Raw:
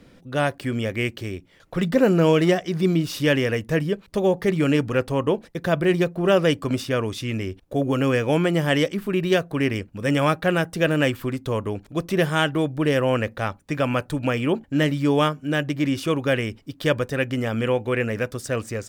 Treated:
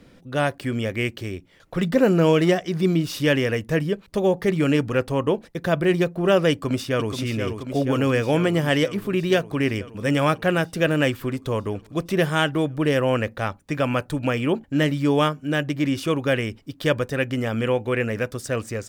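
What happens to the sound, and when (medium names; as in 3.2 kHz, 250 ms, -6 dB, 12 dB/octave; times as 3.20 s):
6.51–7.14 s: echo throw 480 ms, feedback 75%, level -6.5 dB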